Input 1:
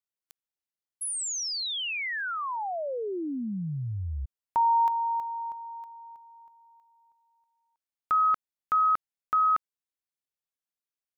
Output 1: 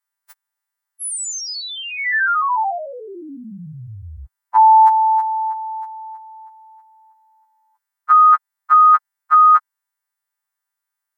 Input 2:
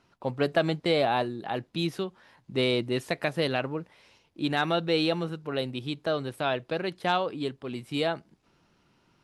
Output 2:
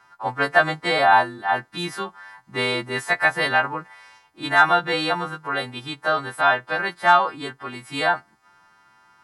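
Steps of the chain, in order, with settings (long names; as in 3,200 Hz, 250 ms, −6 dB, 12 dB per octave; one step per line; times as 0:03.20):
every partial snapped to a pitch grid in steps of 2 semitones
flat-topped bell 1,200 Hz +14.5 dB
level −1 dB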